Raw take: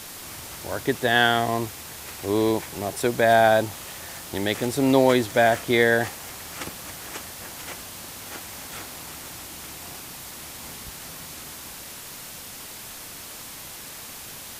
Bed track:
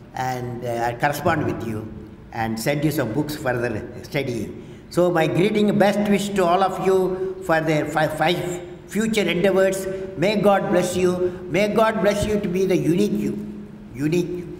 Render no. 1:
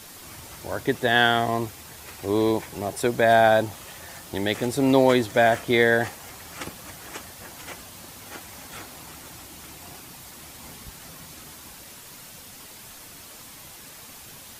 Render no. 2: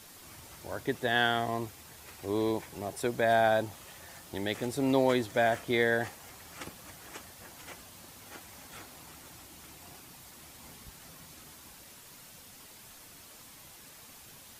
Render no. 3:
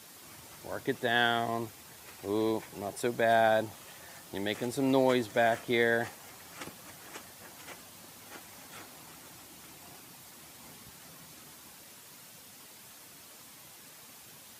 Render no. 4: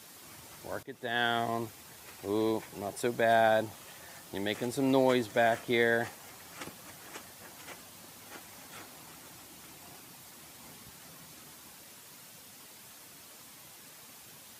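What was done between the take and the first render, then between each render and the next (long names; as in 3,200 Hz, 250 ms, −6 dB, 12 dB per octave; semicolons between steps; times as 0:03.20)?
broadband denoise 6 dB, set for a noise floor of −40 dBFS
level −8 dB
high-pass filter 110 Hz
0:00.83–0:01.41: fade in, from −18 dB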